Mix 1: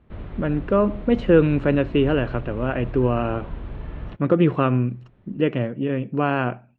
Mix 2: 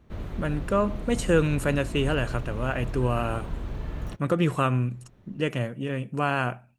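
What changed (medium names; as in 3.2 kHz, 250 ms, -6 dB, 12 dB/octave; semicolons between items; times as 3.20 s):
speech: add peaking EQ 320 Hz -8.5 dB 2 oct; master: remove low-pass 3.4 kHz 24 dB/octave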